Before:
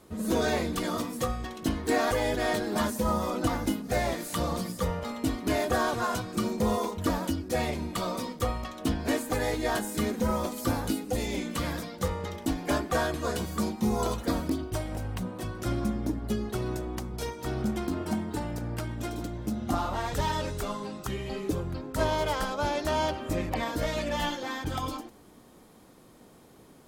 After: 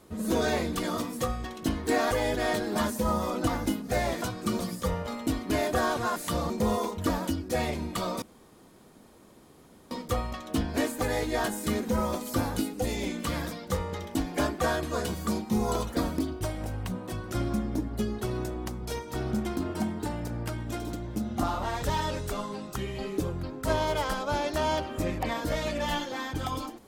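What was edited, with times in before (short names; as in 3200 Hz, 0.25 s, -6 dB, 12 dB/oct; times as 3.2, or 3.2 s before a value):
4.22–4.56 swap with 6.13–6.5
8.22 insert room tone 1.69 s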